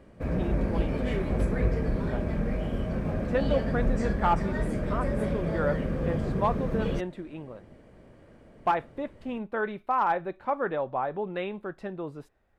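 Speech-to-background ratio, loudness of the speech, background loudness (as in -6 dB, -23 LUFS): -2.0 dB, -32.0 LUFS, -30.0 LUFS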